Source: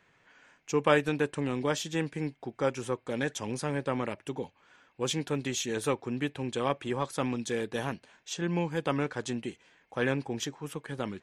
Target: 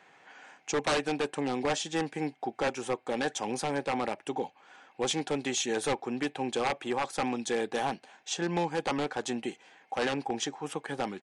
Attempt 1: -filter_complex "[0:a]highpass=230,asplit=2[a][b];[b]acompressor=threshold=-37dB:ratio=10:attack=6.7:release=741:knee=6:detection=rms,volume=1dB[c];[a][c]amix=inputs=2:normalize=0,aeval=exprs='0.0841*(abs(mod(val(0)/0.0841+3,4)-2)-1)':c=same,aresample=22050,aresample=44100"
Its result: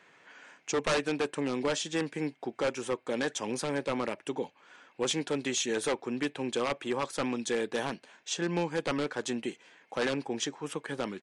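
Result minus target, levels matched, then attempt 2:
1000 Hz band -4.5 dB
-filter_complex "[0:a]highpass=230,equalizer=f=780:w=6.5:g=12.5,asplit=2[a][b];[b]acompressor=threshold=-37dB:ratio=10:attack=6.7:release=741:knee=6:detection=rms,volume=1dB[c];[a][c]amix=inputs=2:normalize=0,aeval=exprs='0.0841*(abs(mod(val(0)/0.0841+3,4)-2)-1)':c=same,aresample=22050,aresample=44100"

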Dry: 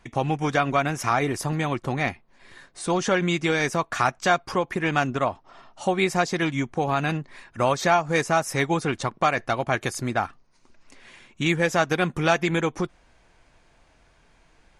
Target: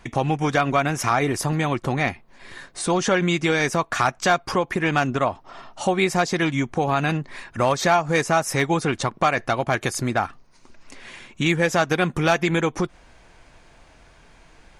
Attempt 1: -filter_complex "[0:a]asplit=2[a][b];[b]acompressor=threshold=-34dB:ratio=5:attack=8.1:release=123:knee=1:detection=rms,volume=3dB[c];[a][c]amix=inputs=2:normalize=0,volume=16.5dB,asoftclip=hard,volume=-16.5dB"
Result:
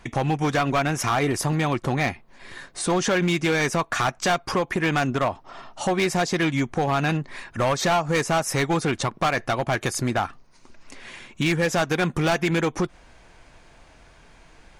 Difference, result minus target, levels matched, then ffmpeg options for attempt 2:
overloaded stage: distortion +17 dB
-filter_complex "[0:a]asplit=2[a][b];[b]acompressor=threshold=-34dB:ratio=5:attack=8.1:release=123:knee=1:detection=rms,volume=3dB[c];[a][c]amix=inputs=2:normalize=0,volume=9dB,asoftclip=hard,volume=-9dB"

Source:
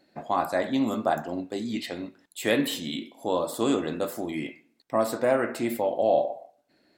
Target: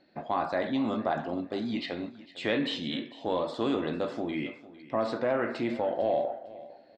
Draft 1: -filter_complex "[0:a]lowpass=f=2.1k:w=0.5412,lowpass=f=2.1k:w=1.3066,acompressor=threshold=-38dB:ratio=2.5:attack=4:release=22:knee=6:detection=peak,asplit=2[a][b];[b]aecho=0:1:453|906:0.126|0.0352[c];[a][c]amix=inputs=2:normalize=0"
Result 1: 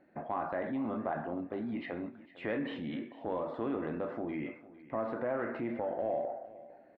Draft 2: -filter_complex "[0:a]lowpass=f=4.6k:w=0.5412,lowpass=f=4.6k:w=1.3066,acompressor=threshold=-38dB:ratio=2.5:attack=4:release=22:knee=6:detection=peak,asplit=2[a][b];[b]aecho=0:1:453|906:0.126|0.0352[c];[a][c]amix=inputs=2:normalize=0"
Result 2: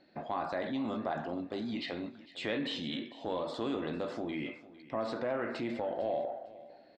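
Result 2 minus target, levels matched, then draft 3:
compressor: peak gain reduction +6.5 dB
-filter_complex "[0:a]lowpass=f=4.6k:w=0.5412,lowpass=f=4.6k:w=1.3066,acompressor=threshold=-27.5dB:ratio=2.5:attack=4:release=22:knee=6:detection=peak,asplit=2[a][b];[b]aecho=0:1:453|906:0.126|0.0352[c];[a][c]amix=inputs=2:normalize=0"

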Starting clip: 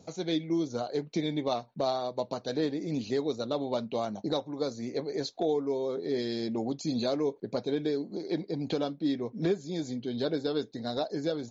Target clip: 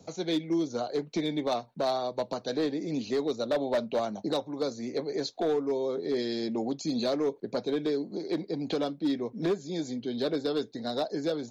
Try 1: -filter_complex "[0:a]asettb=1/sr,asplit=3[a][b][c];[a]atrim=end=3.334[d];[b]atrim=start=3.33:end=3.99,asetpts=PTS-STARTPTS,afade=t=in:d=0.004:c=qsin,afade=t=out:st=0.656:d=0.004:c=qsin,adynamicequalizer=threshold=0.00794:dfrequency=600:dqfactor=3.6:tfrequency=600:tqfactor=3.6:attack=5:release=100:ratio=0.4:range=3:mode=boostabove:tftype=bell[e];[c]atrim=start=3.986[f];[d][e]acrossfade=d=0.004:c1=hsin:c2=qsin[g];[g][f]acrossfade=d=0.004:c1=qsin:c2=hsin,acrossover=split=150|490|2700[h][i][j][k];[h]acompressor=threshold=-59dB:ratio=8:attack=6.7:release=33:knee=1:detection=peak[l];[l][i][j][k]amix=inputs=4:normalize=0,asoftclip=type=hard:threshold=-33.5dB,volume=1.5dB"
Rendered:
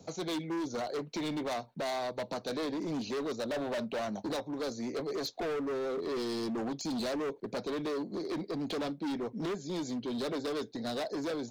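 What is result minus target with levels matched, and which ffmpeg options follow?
hard clip: distortion +13 dB
-filter_complex "[0:a]asettb=1/sr,asplit=3[a][b][c];[a]atrim=end=3.334[d];[b]atrim=start=3.33:end=3.99,asetpts=PTS-STARTPTS,afade=t=in:d=0.004:c=qsin,afade=t=out:st=0.656:d=0.004:c=qsin,adynamicequalizer=threshold=0.00794:dfrequency=600:dqfactor=3.6:tfrequency=600:tqfactor=3.6:attack=5:release=100:ratio=0.4:range=3:mode=boostabove:tftype=bell[e];[c]atrim=start=3.986[f];[d][e]acrossfade=d=0.004:c1=hsin:c2=qsin[g];[g][f]acrossfade=d=0.004:c1=qsin:c2=hsin,acrossover=split=150|490|2700[h][i][j][k];[h]acompressor=threshold=-59dB:ratio=8:attack=6.7:release=33:knee=1:detection=peak[l];[l][i][j][k]amix=inputs=4:normalize=0,asoftclip=type=hard:threshold=-23.5dB,volume=1.5dB"

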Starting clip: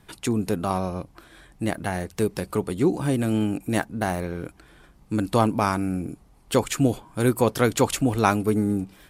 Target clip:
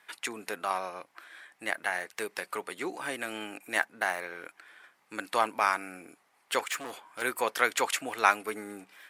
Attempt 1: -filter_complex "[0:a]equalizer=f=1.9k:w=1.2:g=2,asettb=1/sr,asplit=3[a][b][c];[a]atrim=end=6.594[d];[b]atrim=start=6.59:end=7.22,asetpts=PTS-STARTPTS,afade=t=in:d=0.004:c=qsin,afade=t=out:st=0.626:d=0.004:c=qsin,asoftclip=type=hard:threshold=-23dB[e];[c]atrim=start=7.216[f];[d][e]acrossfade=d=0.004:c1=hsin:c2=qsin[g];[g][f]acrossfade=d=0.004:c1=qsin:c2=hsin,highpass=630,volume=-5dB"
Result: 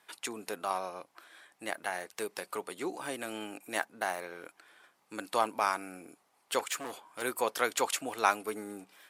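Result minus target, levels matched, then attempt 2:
2000 Hz band -3.5 dB
-filter_complex "[0:a]equalizer=f=1.9k:w=1.2:g=10,asettb=1/sr,asplit=3[a][b][c];[a]atrim=end=6.594[d];[b]atrim=start=6.59:end=7.22,asetpts=PTS-STARTPTS,afade=t=in:d=0.004:c=qsin,afade=t=out:st=0.626:d=0.004:c=qsin,asoftclip=type=hard:threshold=-23dB[e];[c]atrim=start=7.216[f];[d][e]acrossfade=d=0.004:c1=hsin:c2=qsin[g];[g][f]acrossfade=d=0.004:c1=qsin:c2=hsin,highpass=630,volume=-5dB"

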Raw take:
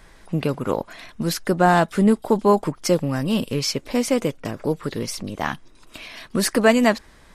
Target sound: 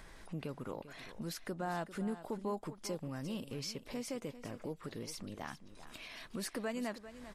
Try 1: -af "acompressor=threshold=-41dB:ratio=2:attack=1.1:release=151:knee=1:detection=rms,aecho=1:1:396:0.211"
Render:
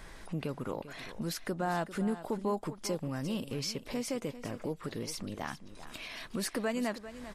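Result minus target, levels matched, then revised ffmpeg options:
compressor: peak gain reduction -6 dB
-af "acompressor=threshold=-52.5dB:ratio=2:attack=1.1:release=151:knee=1:detection=rms,aecho=1:1:396:0.211"

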